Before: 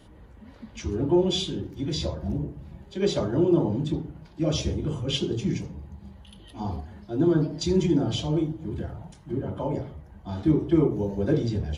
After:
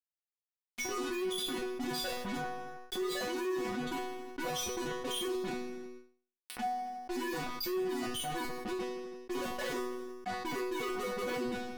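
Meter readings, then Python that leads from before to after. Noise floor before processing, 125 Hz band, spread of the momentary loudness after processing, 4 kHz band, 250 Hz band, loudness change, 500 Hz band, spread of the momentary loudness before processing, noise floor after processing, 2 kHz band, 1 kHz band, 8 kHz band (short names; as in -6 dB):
-50 dBFS, -24.5 dB, 6 LU, -5.5 dB, -13.5 dB, -10.0 dB, -8.5 dB, 16 LU, under -85 dBFS, +5.0 dB, +2.0 dB, n/a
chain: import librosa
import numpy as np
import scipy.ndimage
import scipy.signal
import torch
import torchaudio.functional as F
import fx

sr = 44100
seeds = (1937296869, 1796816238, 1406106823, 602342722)

p1 = fx.spec_expand(x, sr, power=2.9)
p2 = fx.dereverb_blind(p1, sr, rt60_s=1.0)
p3 = scipy.signal.sosfilt(scipy.signal.butter(2, 520.0, 'highpass', fs=sr, output='sos'), p2)
p4 = fx.peak_eq(p3, sr, hz=4300.0, db=-3.0, octaves=0.52)
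p5 = fx.rider(p4, sr, range_db=3, speed_s=0.5)
p6 = fx.fuzz(p5, sr, gain_db=59.0, gate_db=-51.0)
p7 = fx.resonator_bank(p6, sr, root=59, chord='fifth', decay_s=0.43)
p8 = p7 + fx.echo_feedback(p7, sr, ms=81, feedback_pct=48, wet_db=-17.5, dry=0)
p9 = fx.env_flatten(p8, sr, amount_pct=70)
y = p9 * 10.0 ** (-8.0 / 20.0)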